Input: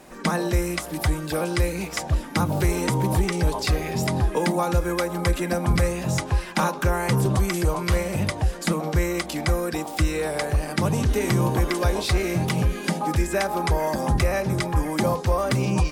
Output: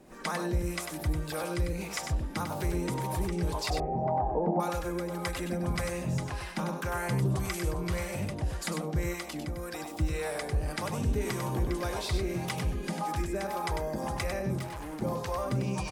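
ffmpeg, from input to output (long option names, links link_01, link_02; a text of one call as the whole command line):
ffmpeg -i in.wav -filter_complex "[0:a]asplit=2[link_01][link_02];[link_02]alimiter=limit=-23dB:level=0:latency=1:release=25,volume=-2dB[link_03];[link_01][link_03]amix=inputs=2:normalize=0,asettb=1/sr,asplit=3[link_04][link_05][link_06];[link_04]atrim=end=3.704[link_07];[link_05]atrim=start=3.7:end=4.6,asetpts=PTS-STARTPTS,afade=type=in:duration=0.004:curve=qsin,afade=type=out:start_time=0.896:duration=0.004:curve=qsin,lowpass=frequency=750:width_type=q:width=4.9[link_08];[link_06]atrim=start=4.596[link_09];[link_07][link_08]acrossfade=duration=0.004:curve1=hsin:curve2=qsin[link_10];[link_10][link_09]acrossfade=duration=0.004:curve1=qsin:curve2=hsin,asettb=1/sr,asplit=3[link_11][link_12][link_13];[link_11]atrim=end=9.134[link_14];[link_12]atrim=start=9.13:end=9.8,asetpts=PTS-STARTPTS,afade=type=in:duration=0.004:curve=qsin,afade=type=out:start_time=0.666:duration=0.004:curve=qsin,acompressor=threshold=-22dB:ratio=6[link_15];[link_13]atrim=start=9.796[link_16];[link_14][link_15]acrossfade=duration=0.004:curve1=hsin:curve2=qsin[link_17];[link_17][link_16]acrossfade=duration=0.004:curve1=qsin:curve2=hsin,acrossover=split=510[link_18][link_19];[link_18]aeval=exprs='val(0)*(1-0.7/2+0.7/2*cos(2*PI*1.8*n/s))':channel_layout=same[link_20];[link_19]aeval=exprs='val(0)*(1-0.7/2-0.7/2*cos(2*PI*1.8*n/s))':channel_layout=same[link_21];[link_20][link_21]amix=inputs=2:normalize=0,asettb=1/sr,asplit=3[link_22][link_23][link_24];[link_22]atrim=end=14.584[link_25];[link_23]atrim=start=14.58:end=15.02,asetpts=PTS-STARTPTS,afade=type=in:duration=0.004:curve=qsin,afade=type=out:start_time=0.436:duration=0.004:curve=qsin,asoftclip=type=hard:threshold=-29dB[link_26];[link_24]atrim=start=15.016[link_27];[link_25][link_26]acrossfade=duration=0.004:curve1=hsin:curve2=qsin[link_28];[link_28][link_27]acrossfade=duration=0.004:curve1=qsin:curve2=hsin,asplit=2[link_29][link_30];[link_30]aecho=0:1:98:0.501[link_31];[link_29][link_31]amix=inputs=2:normalize=0,volume=-9dB" out.wav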